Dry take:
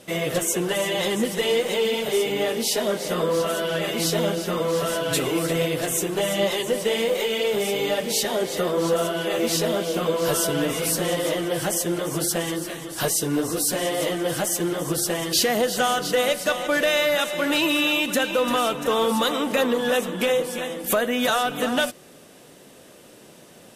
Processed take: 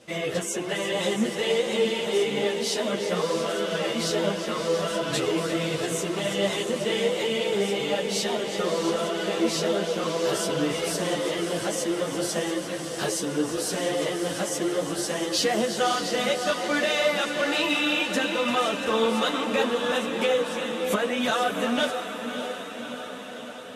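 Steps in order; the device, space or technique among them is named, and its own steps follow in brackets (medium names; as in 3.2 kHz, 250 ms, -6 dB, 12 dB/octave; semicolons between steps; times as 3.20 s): high-pass 46 Hz; echo that smears into a reverb 619 ms, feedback 67%, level -8 dB; string-machine ensemble chorus (three-phase chorus; low-pass 7.5 kHz 12 dB/octave)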